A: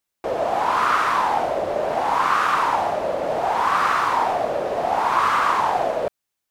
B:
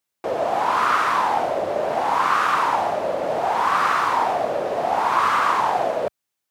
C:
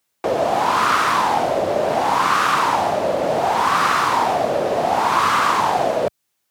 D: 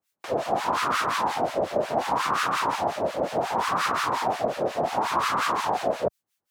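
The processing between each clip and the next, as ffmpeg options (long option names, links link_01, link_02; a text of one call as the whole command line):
ffmpeg -i in.wav -af "highpass=86" out.wav
ffmpeg -i in.wav -filter_complex "[0:a]acrossover=split=320|3000[link_01][link_02][link_03];[link_02]acompressor=threshold=-36dB:ratio=1.5[link_04];[link_01][link_04][link_03]amix=inputs=3:normalize=0,volume=8.5dB" out.wav
ffmpeg -i in.wav -filter_complex "[0:a]acrossover=split=1200[link_01][link_02];[link_01]aeval=exprs='val(0)*(1-1/2+1/2*cos(2*PI*5.6*n/s))':channel_layout=same[link_03];[link_02]aeval=exprs='val(0)*(1-1/2-1/2*cos(2*PI*5.6*n/s))':channel_layout=same[link_04];[link_03][link_04]amix=inputs=2:normalize=0,volume=-2.5dB" out.wav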